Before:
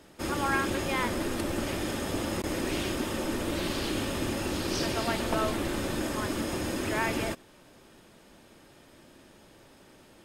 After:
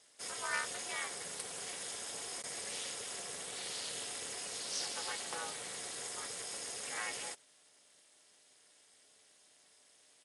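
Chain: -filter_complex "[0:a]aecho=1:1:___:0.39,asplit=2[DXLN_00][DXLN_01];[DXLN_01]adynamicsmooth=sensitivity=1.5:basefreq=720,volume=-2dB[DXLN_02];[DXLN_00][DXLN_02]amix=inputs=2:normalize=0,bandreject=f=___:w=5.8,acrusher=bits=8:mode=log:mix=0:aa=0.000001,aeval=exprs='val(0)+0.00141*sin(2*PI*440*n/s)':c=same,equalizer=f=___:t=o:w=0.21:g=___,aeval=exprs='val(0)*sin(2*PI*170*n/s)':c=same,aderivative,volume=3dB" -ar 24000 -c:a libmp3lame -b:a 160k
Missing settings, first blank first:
7.4, 2300, 2100, 8.5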